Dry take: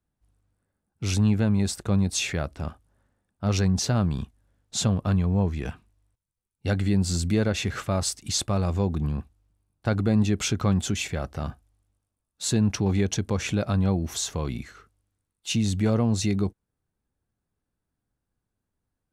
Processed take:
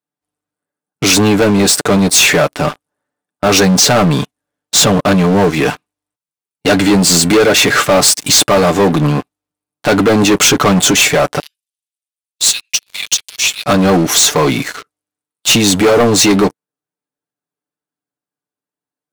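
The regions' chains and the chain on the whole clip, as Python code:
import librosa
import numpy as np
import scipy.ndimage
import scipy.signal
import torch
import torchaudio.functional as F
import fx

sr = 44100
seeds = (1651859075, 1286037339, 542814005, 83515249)

y = fx.chain(x, sr, fx.steep_highpass(hz=2500.0, slope=36),
    fx.flanger_cancel(hz=1.5, depth_ms=7.6), at=(11.39, 13.66))
y = scipy.signal.sosfilt(scipy.signal.butter(2, 290.0, 'highpass', fs=sr, output='sos'), y)
y = y + 0.59 * np.pad(y, (int(6.8 * sr / 1000.0), 0))[:len(y)]
y = fx.leveller(y, sr, passes=5)
y = y * librosa.db_to_amplitude(6.5)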